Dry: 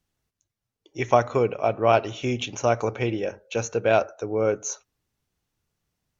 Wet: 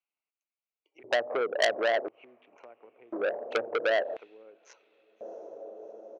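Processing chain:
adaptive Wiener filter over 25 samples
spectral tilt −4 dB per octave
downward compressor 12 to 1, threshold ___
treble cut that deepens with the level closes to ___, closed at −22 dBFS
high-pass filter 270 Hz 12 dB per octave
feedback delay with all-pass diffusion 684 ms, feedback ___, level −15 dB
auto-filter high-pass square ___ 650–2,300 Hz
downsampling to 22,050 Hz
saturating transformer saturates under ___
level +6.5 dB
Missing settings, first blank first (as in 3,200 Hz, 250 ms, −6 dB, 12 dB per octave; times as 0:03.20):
−19 dBFS, 380 Hz, 59%, 0.48 Hz, 3,300 Hz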